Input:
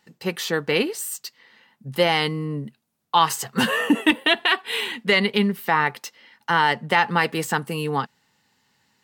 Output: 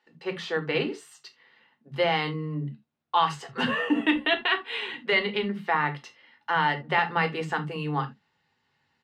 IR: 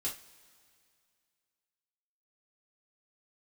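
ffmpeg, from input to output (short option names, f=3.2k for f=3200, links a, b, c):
-filter_complex "[0:a]lowpass=3.3k,acrossover=split=260[a][b];[a]adelay=60[c];[c][b]amix=inputs=2:normalize=0,asplit=2[d][e];[1:a]atrim=start_sample=2205,atrim=end_sample=3969[f];[e][f]afir=irnorm=-1:irlink=0,volume=-3dB[g];[d][g]amix=inputs=2:normalize=0,volume=-8dB"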